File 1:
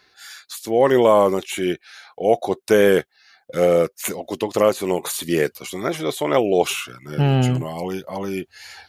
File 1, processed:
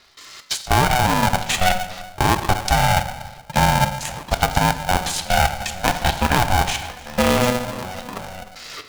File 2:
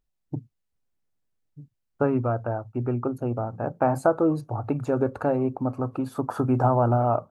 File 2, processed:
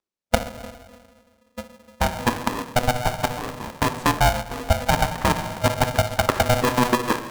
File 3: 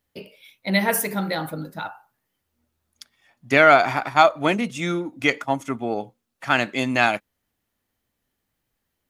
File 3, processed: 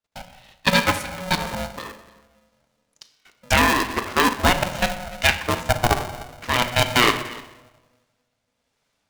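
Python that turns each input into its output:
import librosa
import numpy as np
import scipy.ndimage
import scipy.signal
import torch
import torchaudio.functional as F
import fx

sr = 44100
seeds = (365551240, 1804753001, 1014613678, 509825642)

p1 = fx.highpass(x, sr, hz=170.0, slope=6)
p2 = fx.bass_treble(p1, sr, bass_db=-2, treble_db=10)
p3 = fx.rider(p2, sr, range_db=3, speed_s=0.5)
p4 = p2 + (p3 * librosa.db_to_amplitude(-2.5))
p5 = fx.transient(p4, sr, attack_db=8, sustain_db=0)
p6 = fx.level_steps(p5, sr, step_db=17)
p7 = fx.rotary(p6, sr, hz=1.1)
p8 = fx.air_absorb(p7, sr, metres=110.0)
p9 = p8 + fx.echo_single(p8, sr, ms=298, db=-21.5, dry=0)
p10 = fx.room_shoebox(p9, sr, seeds[0], volume_m3=530.0, walls='mixed', distance_m=0.56)
p11 = p10 * np.sign(np.sin(2.0 * np.pi * 370.0 * np.arange(len(p10)) / sr))
y = p11 * librosa.db_to_amplitude(3.5)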